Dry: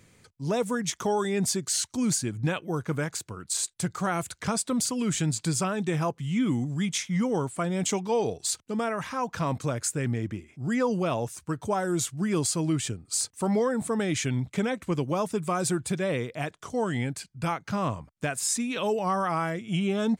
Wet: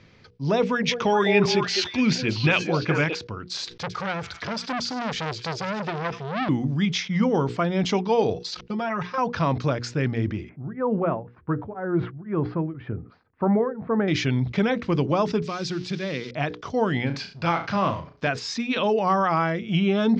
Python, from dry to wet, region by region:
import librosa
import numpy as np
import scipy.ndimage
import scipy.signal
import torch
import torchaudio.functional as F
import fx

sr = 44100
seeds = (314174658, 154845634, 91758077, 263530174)

y = fx.chain(x, sr, fx.peak_eq(hz=2500.0, db=11.5, octaves=0.69),
    fx.echo_stepped(ms=208, hz=490.0, octaves=1.4, feedback_pct=70, wet_db=-1.0), at=(0.62, 3.15))
y = fx.chain(y, sr, fx.echo_wet_highpass(ms=100, feedback_pct=57, hz=3000.0, wet_db=-8.5),
    fx.transformer_sat(knee_hz=1900.0), at=(3.78, 6.49))
y = fx.chain(y, sr, fx.comb(ms=5.6, depth=0.88),
    fx.level_steps(step_db=16), at=(8.35, 9.18))
y = fx.chain(y, sr, fx.lowpass(hz=1700.0, slope=24),
    fx.tremolo_abs(hz=2.0), at=(10.49, 14.08))
y = fx.chain(y, sr, fx.crossing_spikes(level_db=-27.0),
    fx.highpass(hz=170.0, slope=12),
    fx.peak_eq(hz=790.0, db=-11.0, octaves=2.4), at=(15.42, 16.31))
y = fx.chain(y, sr, fx.law_mismatch(coded='mu'),
    fx.low_shelf(hz=200.0, db=-8.5),
    fx.room_flutter(wall_m=6.1, rt60_s=0.26), at=(17.06, 18.28))
y = scipy.signal.sosfilt(scipy.signal.butter(8, 5400.0, 'lowpass', fs=sr, output='sos'), y)
y = fx.hum_notches(y, sr, base_hz=60, count=8)
y = fx.sustainer(y, sr, db_per_s=150.0)
y = F.gain(torch.from_numpy(y), 5.5).numpy()